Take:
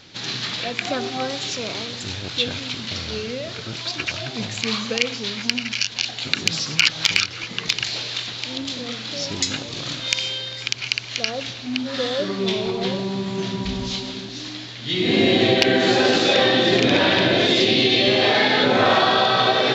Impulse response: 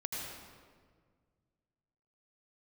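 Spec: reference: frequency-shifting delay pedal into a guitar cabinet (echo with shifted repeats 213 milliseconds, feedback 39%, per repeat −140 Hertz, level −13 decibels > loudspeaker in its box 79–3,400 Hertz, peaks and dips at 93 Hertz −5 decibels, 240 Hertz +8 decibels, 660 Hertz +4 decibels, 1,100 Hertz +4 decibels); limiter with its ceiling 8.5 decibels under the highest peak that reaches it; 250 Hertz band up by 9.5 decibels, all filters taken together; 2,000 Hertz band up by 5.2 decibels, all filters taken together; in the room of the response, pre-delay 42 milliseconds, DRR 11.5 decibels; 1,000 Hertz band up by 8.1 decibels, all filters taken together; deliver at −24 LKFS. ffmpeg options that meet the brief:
-filter_complex "[0:a]equalizer=frequency=250:width_type=o:gain=5.5,equalizer=frequency=1000:width_type=o:gain=6.5,equalizer=frequency=2000:width_type=o:gain=4.5,alimiter=limit=-5.5dB:level=0:latency=1,asplit=2[link_01][link_02];[1:a]atrim=start_sample=2205,adelay=42[link_03];[link_02][link_03]afir=irnorm=-1:irlink=0,volume=-13.5dB[link_04];[link_01][link_04]amix=inputs=2:normalize=0,asplit=5[link_05][link_06][link_07][link_08][link_09];[link_06]adelay=213,afreqshift=-140,volume=-13dB[link_10];[link_07]adelay=426,afreqshift=-280,volume=-21.2dB[link_11];[link_08]adelay=639,afreqshift=-420,volume=-29.4dB[link_12];[link_09]adelay=852,afreqshift=-560,volume=-37.5dB[link_13];[link_05][link_10][link_11][link_12][link_13]amix=inputs=5:normalize=0,highpass=79,equalizer=frequency=93:width_type=q:width=4:gain=-5,equalizer=frequency=240:width_type=q:width=4:gain=8,equalizer=frequency=660:width_type=q:width=4:gain=4,equalizer=frequency=1100:width_type=q:width=4:gain=4,lowpass=frequency=3400:width=0.5412,lowpass=frequency=3400:width=1.3066,volume=-7dB"

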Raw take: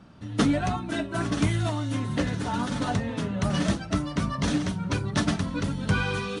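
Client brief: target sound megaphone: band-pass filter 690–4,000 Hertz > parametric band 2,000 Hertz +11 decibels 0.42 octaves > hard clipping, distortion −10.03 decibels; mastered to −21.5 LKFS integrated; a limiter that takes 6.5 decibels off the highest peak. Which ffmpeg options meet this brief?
ffmpeg -i in.wav -af "alimiter=limit=-19.5dB:level=0:latency=1,highpass=690,lowpass=4000,equalizer=frequency=2000:width_type=o:width=0.42:gain=11,asoftclip=type=hard:threshold=-31.5dB,volume=14dB" out.wav

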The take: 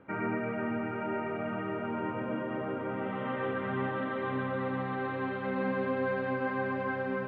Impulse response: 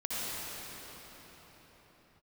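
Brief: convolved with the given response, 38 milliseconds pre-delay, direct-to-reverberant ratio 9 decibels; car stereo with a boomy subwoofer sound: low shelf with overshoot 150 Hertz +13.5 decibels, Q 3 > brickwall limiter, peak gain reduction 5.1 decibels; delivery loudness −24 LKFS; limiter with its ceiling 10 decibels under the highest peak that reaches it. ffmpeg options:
-filter_complex "[0:a]alimiter=level_in=6.5dB:limit=-24dB:level=0:latency=1,volume=-6.5dB,asplit=2[link_01][link_02];[1:a]atrim=start_sample=2205,adelay=38[link_03];[link_02][link_03]afir=irnorm=-1:irlink=0,volume=-16dB[link_04];[link_01][link_04]amix=inputs=2:normalize=0,lowshelf=frequency=150:width_type=q:width=3:gain=13.5,volume=12.5dB,alimiter=limit=-15dB:level=0:latency=1"

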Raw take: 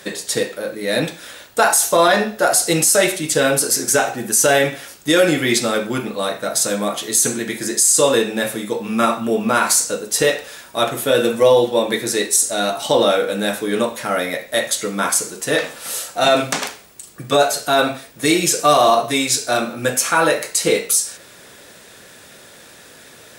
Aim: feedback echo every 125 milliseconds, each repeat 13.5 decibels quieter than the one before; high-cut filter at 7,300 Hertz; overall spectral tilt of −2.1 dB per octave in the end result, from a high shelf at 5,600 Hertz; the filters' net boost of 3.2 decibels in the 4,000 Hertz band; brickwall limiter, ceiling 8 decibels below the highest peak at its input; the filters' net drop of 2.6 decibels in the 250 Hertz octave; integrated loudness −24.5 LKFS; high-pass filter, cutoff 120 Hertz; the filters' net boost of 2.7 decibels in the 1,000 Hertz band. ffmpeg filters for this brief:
ffmpeg -i in.wav -af "highpass=120,lowpass=7300,equalizer=frequency=250:width_type=o:gain=-3.5,equalizer=frequency=1000:width_type=o:gain=4,equalizer=frequency=4000:width_type=o:gain=6.5,highshelf=frequency=5600:gain=-7.5,alimiter=limit=-8dB:level=0:latency=1,aecho=1:1:125|250:0.211|0.0444,volume=-5dB" out.wav

